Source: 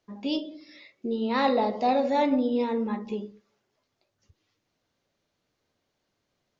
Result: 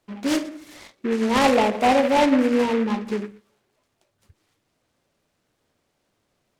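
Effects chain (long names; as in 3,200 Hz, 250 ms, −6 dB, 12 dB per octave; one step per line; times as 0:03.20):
short delay modulated by noise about 1,500 Hz, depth 0.074 ms
level +6 dB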